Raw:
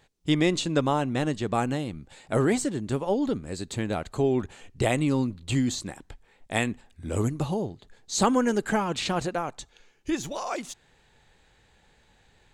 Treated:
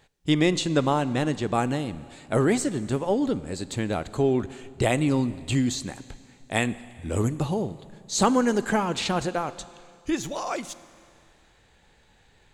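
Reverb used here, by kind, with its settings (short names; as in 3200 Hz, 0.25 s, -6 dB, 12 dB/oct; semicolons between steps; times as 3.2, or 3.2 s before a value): Schroeder reverb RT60 2.3 s, combs from 33 ms, DRR 16 dB; gain +1.5 dB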